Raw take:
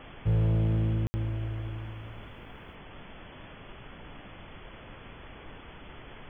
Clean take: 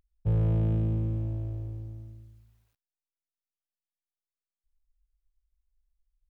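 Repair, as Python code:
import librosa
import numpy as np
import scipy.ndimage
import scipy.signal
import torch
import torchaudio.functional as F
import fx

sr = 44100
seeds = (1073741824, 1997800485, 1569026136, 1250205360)

y = fx.fix_ambience(x, sr, seeds[0], print_start_s=3.19, print_end_s=3.69, start_s=1.07, end_s=1.14)
y = fx.noise_reduce(y, sr, print_start_s=3.19, print_end_s=3.69, reduce_db=30.0)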